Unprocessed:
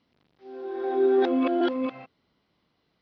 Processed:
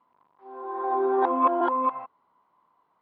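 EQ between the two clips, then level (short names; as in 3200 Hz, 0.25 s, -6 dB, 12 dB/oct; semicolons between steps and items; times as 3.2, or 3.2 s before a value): synth low-pass 1000 Hz, resonance Q 9.3; tilt +4 dB/oct; 0.0 dB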